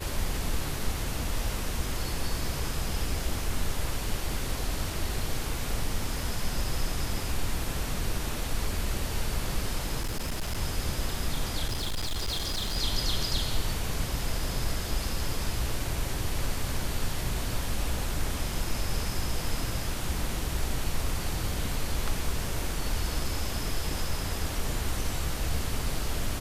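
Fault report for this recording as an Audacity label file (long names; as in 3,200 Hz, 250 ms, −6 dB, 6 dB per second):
10.010000	10.580000	clipping −26.5 dBFS
11.680000	12.780000	clipping −26.5 dBFS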